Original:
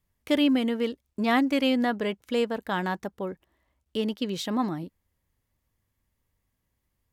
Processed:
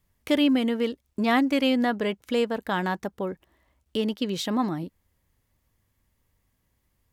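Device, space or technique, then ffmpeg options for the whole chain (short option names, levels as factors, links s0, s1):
parallel compression: -filter_complex "[0:a]asplit=2[s0][s1];[s1]acompressor=threshold=0.0126:ratio=6,volume=0.891[s2];[s0][s2]amix=inputs=2:normalize=0"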